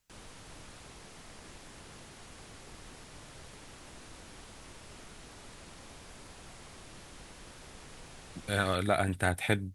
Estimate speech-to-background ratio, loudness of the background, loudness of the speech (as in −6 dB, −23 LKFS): 20.0 dB, −50.5 LKFS, −30.5 LKFS